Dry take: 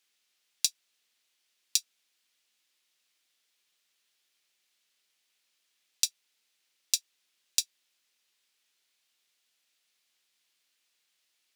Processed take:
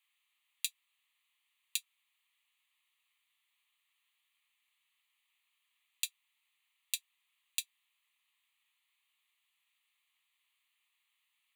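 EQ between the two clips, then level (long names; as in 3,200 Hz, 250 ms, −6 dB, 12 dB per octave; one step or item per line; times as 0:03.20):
high-pass filter 980 Hz 24 dB per octave
parametric band 1,300 Hz +9.5 dB 1.4 octaves
phaser with its sweep stopped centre 1,500 Hz, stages 6
−2.5 dB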